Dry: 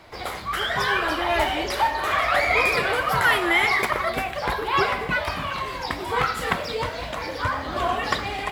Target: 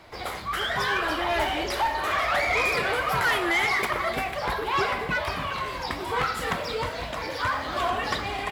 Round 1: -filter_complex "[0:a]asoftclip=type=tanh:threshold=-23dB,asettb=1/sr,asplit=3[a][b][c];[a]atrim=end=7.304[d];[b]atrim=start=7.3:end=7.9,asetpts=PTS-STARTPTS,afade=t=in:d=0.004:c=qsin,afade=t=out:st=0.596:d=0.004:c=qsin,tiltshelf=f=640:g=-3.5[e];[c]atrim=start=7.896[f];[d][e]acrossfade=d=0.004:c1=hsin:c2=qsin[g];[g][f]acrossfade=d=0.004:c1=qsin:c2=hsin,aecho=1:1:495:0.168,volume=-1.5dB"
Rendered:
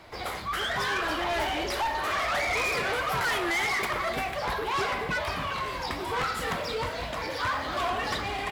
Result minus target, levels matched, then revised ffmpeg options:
soft clip: distortion +7 dB
-filter_complex "[0:a]asoftclip=type=tanh:threshold=-16dB,asettb=1/sr,asplit=3[a][b][c];[a]atrim=end=7.304[d];[b]atrim=start=7.3:end=7.9,asetpts=PTS-STARTPTS,afade=t=in:d=0.004:c=qsin,afade=t=out:st=0.596:d=0.004:c=qsin,tiltshelf=f=640:g=-3.5[e];[c]atrim=start=7.896[f];[d][e]acrossfade=d=0.004:c1=hsin:c2=qsin[g];[g][f]acrossfade=d=0.004:c1=qsin:c2=hsin,aecho=1:1:495:0.168,volume=-1.5dB"

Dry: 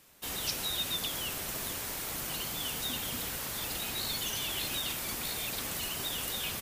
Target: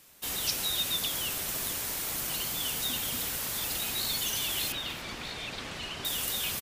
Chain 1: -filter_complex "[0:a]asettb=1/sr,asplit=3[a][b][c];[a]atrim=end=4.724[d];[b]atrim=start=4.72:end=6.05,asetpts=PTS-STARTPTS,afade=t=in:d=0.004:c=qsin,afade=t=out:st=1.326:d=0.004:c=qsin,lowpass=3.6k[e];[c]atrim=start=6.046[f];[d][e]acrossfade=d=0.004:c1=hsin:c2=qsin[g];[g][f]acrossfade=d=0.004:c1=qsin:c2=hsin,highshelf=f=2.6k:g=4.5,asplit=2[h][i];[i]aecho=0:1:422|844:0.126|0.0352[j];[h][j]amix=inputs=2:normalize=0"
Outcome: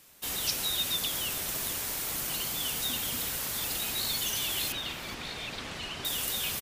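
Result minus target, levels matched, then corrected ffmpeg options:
echo 0.126 s late
-filter_complex "[0:a]asettb=1/sr,asplit=3[a][b][c];[a]atrim=end=4.724[d];[b]atrim=start=4.72:end=6.05,asetpts=PTS-STARTPTS,afade=t=in:d=0.004:c=qsin,afade=t=out:st=1.326:d=0.004:c=qsin,lowpass=3.6k[e];[c]atrim=start=6.046[f];[d][e]acrossfade=d=0.004:c1=hsin:c2=qsin[g];[g][f]acrossfade=d=0.004:c1=qsin:c2=hsin,highshelf=f=2.6k:g=4.5,asplit=2[h][i];[i]aecho=0:1:296|592:0.126|0.0352[j];[h][j]amix=inputs=2:normalize=0"

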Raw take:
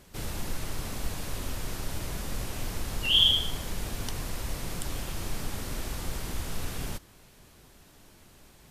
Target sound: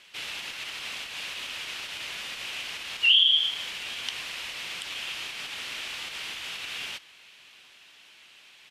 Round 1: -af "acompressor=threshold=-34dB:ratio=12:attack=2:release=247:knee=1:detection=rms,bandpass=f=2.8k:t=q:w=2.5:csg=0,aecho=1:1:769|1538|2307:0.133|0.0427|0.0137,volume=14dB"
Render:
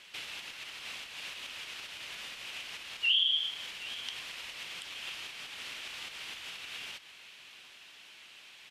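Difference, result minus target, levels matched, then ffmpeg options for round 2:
compressor: peak gain reduction +8 dB; echo-to-direct +8.5 dB
-af "acompressor=threshold=-25.5dB:ratio=12:attack=2:release=247:knee=1:detection=rms,bandpass=f=2.8k:t=q:w=2.5:csg=0,aecho=1:1:769|1538:0.0501|0.016,volume=14dB"

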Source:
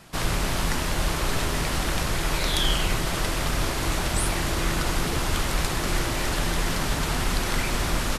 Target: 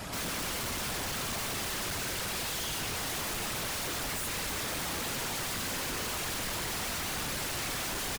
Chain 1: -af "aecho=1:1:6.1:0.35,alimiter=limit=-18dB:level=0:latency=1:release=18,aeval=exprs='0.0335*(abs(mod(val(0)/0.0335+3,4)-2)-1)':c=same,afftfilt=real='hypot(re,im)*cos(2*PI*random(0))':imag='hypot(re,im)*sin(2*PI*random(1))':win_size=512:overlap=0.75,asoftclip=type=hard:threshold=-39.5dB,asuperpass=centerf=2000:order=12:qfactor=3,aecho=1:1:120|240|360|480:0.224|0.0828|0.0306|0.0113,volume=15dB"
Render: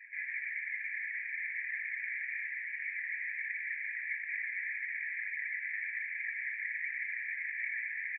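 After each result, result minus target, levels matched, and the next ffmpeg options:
2000 Hz band +8.0 dB; hard clip: distortion -6 dB
-af "aecho=1:1:6.1:0.35,alimiter=limit=-18dB:level=0:latency=1:release=18,aeval=exprs='0.0335*(abs(mod(val(0)/0.0335+3,4)-2)-1)':c=same,afftfilt=real='hypot(re,im)*cos(2*PI*random(0))':imag='hypot(re,im)*sin(2*PI*random(1))':win_size=512:overlap=0.75,asoftclip=type=hard:threshold=-39.5dB,aecho=1:1:120|240|360|480:0.224|0.0828|0.0306|0.0113,volume=15dB"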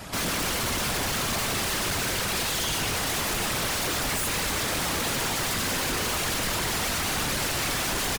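hard clip: distortion -6 dB
-af "aecho=1:1:6.1:0.35,alimiter=limit=-18dB:level=0:latency=1:release=18,aeval=exprs='0.0335*(abs(mod(val(0)/0.0335+3,4)-2)-1)':c=same,afftfilt=real='hypot(re,im)*cos(2*PI*random(0))':imag='hypot(re,im)*sin(2*PI*random(1))':win_size=512:overlap=0.75,asoftclip=type=hard:threshold=-49dB,aecho=1:1:120|240|360|480:0.224|0.0828|0.0306|0.0113,volume=15dB"

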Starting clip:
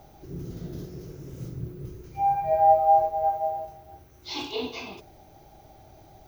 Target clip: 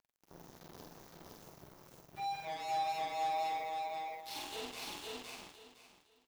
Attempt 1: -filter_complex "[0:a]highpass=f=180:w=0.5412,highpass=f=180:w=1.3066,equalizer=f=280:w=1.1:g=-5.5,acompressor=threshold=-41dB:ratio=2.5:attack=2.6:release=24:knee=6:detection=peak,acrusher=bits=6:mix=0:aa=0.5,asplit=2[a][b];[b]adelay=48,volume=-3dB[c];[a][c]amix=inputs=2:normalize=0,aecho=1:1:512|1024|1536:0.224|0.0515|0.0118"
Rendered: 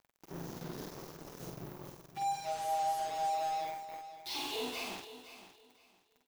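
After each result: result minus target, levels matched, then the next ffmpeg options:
echo-to-direct -11.5 dB; compressor: peak gain reduction -5.5 dB
-filter_complex "[0:a]highpass=f=180:w=0.5412,highpass=f=180:w=1.3066,equalizer=f=280:w=1.1:g=-5.5,acompressor=threshold=-41dB:ratio=2.5:attack=2.6:release=24:knee=6:detection=peak,acrusher=bits=6:mix=0:aa=0.5,asplit=2[a][b];[b]adelay=48,volume=-3dB[c];[a][c]amix=inputs=2:normalize=0,aecho=1:1:512|1024|1536|2048:0.841|0.194|0.0445|0.0102"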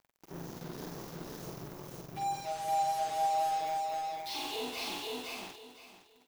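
compressor: peak gain reduction -5.5 dB
-filter_complex "[0:a]highpass=f=180:w=0.5412,highpass=f=180:w=1.3066,equalizer=f=280:w=1.1:g=-5.5,acompressor=threshold=-50dB:ratio=2.5:attack=2.6:release=24:knee=6:detection=peak,acrusher=bits=6:mix=0:aa=0.5,asplit=2[a][b];[b]adelay=48,volume=-3dB[c];[a][c]amix=inputs=2:normalize=0,aecho=1:1:512|1024|1536|2048:0.841|0.194|0.0445|0.0102"

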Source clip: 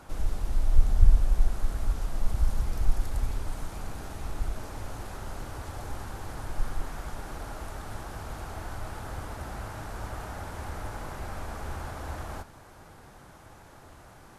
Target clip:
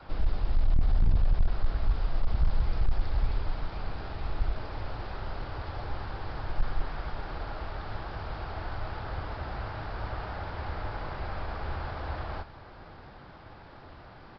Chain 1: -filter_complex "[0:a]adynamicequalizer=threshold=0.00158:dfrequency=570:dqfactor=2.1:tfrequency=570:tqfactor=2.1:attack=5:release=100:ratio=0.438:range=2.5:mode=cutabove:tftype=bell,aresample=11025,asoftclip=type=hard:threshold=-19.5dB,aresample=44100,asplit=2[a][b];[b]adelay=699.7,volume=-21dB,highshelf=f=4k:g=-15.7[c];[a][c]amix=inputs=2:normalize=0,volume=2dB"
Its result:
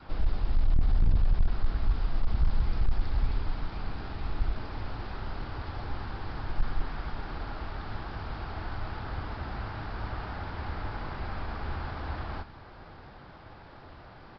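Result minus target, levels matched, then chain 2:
500 Hz band -2.5 dB
-filter_complex "[0:a]adynamicequalizer=threshold=0.00158:dfrequency=240:dqfactor=2.1:tfrequency=240:tqfactor=2.1:attack=5:release=100:ratio=0.438:range=2.5:mode=cutabove:tftype=bell,aresample=11025,asoftclip=type=hard:threshold=-19.5dB,aresample=44100,asplit=2[a][b];[b]adelay=699.7,volume=-21dB,highshelf=f=4k:g=-15.7[c];[a][c]amix=inputs=2:normalize=0,volume=2dB"

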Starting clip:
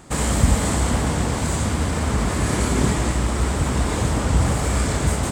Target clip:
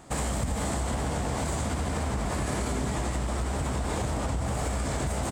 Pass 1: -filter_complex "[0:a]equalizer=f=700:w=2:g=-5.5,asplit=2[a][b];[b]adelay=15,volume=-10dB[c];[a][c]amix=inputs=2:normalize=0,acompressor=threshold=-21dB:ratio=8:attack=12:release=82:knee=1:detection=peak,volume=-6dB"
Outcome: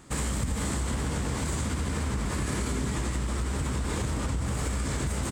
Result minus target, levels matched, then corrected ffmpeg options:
500 Hz band -3.5 dB
-filter_complex "[0:a]equalizer=f=700:w=2:g=5.5,asplit=2[a][b];[b]adelay=15,volume=-10dB[c];[a][c]amix=inputs=2:normalize=0,acompressor=threshold=-21dB:ratio=8:attack=12:release=82:knee=1:detection=peak,volume=-6dB"

